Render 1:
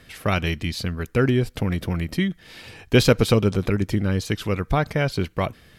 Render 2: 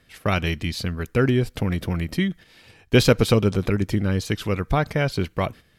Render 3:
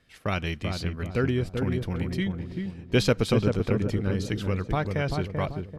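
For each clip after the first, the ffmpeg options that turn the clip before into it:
-af "agate=range=0.355:threshold=0.0112:ratio=16:detection=peak"
-filter_complex "[0:a]lowpass=9800,asplit=2[s0][s1];[s1]adelay=388,lowpass=f=900:p=1,volume=0.668,asplit=2[s2][s3];[s3]adelay=388,lowpass=f=900:p=1,volume=0.44,asplit=2[s4][s5];[s5]adelay=388,lowpass=f=900:p=1,volume=0.44,asplit=2[s6][s7];[s7]adelay=388,lowpass=f=900:p=1,volume=0.44,asplit=2[s8][s9];[s9]adelay=388,lowpass=f=900:p=1,volume=0.44,asplit=2[s10][s11];[s11]adelay=388,lowpass=f=900:p=1,volume=0.44[s12];[s2][s4][s6][s8][s10][s12]amix=inputs=6:normalize=0[s13];[s0][s13]amix=inputs=2:normalize=0,volume=0.501"

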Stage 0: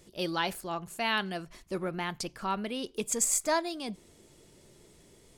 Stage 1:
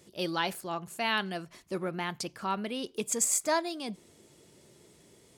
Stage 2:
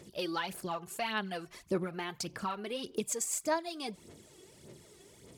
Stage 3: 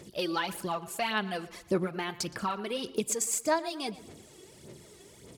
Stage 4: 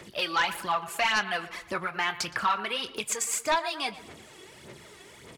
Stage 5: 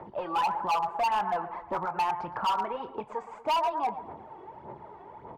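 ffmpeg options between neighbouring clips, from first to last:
-af "highpass=92"
-af "acompressor=threshold=0.0178:ratio=4,aphaser=in_gain=1:out_gain=1:delay=2.7:decay=0.6:speed=1.7:type=sinusoidal"
-filter_complex "[0:a]asplit=2[s0][s1];[s1]adelay=118,lowpass=f=4700:p=1,volume=0.141,asplit=2[s2][s3];[s3]adelay=118,lowpass=f=4700:p=1,volume=0.47,asplit=2[s4][s5];[s5]adelay=118,lowpass=f=4700:p=1,volume=0.47,asplit=2[s6][s7];[s7]adelay=118,lowpass=f=4700:p=1,volume=0.47[s8];[s0][s2][s4][s6][s8]amix=inputs=5:normalize=0,volume=1.58"
-filter_complex "[0:a]acrossover=split=120|870|3100[s0][s1][s2][s3];[s1]acompressor=threshold=0.00891:ratio=6[s4];[s2]aeval=exprs='0.106*sin(PI/2*2.51*val(0)/0.106)':c=same[s5];[s0][s4][s5][s3]amix=inputs=4:normalize=0,asplit=2[s6][s7];[s7]adelay=24,volume=0.2[s8];[s6][s8]amix=inputs=2:normalize=0"
-af "asoftclip=type=tanh:threshold=0.0473,lowpass=f=890:t=q:w=6.5,volume=14.1,asoftclip=hard,volume=0.0708"

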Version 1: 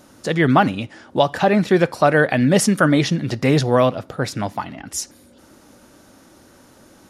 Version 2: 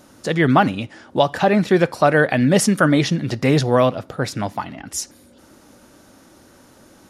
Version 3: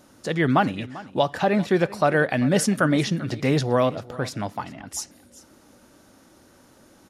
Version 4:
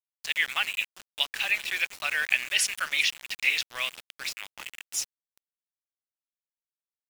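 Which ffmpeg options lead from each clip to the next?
-af anull
-af "aecho=1:1:393:0.119,volume=0.562"
-af "highpass=f=2500:t=q:w=4.2,aeval=exprs='val(0)*gte(abs(val(0)),0.0188)':c=same"

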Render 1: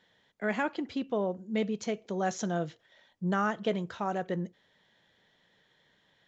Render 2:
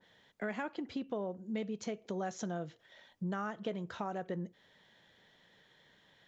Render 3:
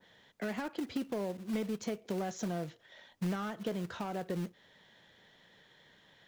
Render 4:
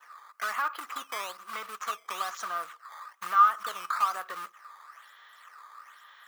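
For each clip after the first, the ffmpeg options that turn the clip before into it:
-af "acompressor=threshold=0.01:ratio=3,adynamicequalizer=threshold=0.00178:dfrequency=1800:dqfactor=0.7:tfrequency=1800:tqfactor=0.7:attack=5:release=100:ratio=0.375:range=2:mode=cutabove:tftype=highshelf,volume=1.33"
-filter_complex "[0:a]acrossover=split=430[s0][s1];[s0]acrusher=bits=3:mode=log:mix=0:aa=0.000001[s2];[s1]asoftclip=type=tanh:threshold=0.0106[s3];[s2][s3]amix=inputs=2:normalize=0,volume=1.41"
-filter_complex "[0:a]acrossover=split=6200[s0][s1];[s0]acrusher=samples=9:mix=1:aa=0.000001:lfo=1:lforange=14.4:lforate=1.1[s2];[s2][s1]amix=inputs=2:normalize=0,highpass=f=1200:t=q:w=13,volume=1.68"

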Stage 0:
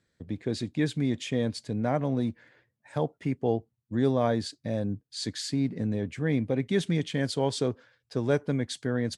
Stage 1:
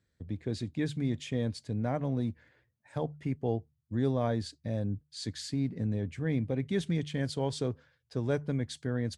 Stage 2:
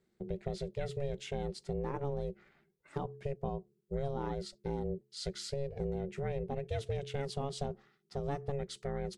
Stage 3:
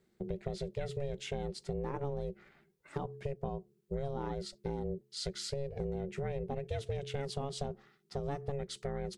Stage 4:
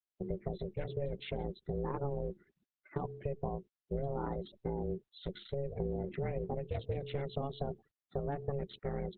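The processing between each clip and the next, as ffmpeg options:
-af "equalizer=f=61:w=0.79:g=12.5,bandreject=f=74.15:t=h:w=4,bandreject=f=148.3:t=h:w=4,volume=0.501"
-af "lowshelf=f=100:g=6.5,acompressor=threshold=0.0282:ratio=4,aeval=exprs='val(0)*sin(2*PI*280*n/s)':c=same,volume=1.12"
-af "acompressor=threshold=0.0112:ratio=2,volume=1.5"
-af "highshelf=f=8900:g=-5.5,afftfilt=real='re*gte(hypot(re,im),0.00355)':imag='im*gte(hypot(re,im),0.00355)':win_size=1024:overlap=0.75,volume=1.12" -ar 48000 -c:a libopus -b:a 8k

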